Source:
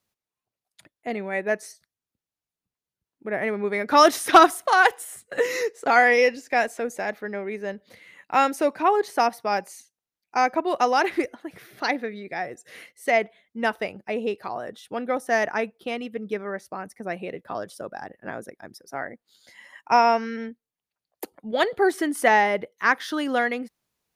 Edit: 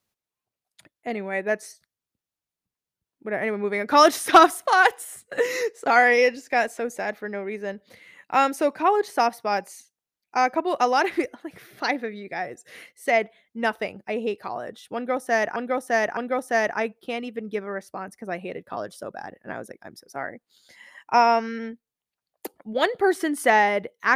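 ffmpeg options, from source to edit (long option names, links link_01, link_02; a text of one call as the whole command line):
ffmpeg -i in.wav -filter_complex "[0:a]asplit=3[link_01][link_02][link_03];[link_01]atrim=end=15.562[link_04];[link_02]atrim=start=14.948:end=15.562[link_05];[link_03]atrim=start=14.948[link_06];[link_04][link_05]acrossfade=duration=0.004:curve1=hsin:curve2=hsin[link_07];[link_07][link_06]acrossfade=duration=0.004:curve1=hsin:curve2=hsin" out.wav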